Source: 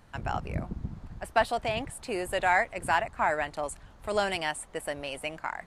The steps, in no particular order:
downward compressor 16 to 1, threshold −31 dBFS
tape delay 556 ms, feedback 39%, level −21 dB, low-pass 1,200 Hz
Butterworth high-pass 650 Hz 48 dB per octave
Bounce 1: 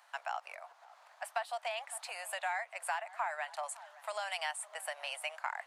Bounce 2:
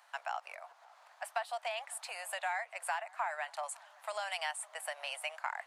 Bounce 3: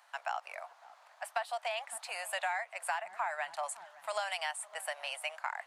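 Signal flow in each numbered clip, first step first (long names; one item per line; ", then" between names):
tape delay, then downward compressor, then Butterworth high-pass
downward compressor, then Butterworth high-pass, then tape delay
Butterworth high-pass, then tape delay, then downward compressor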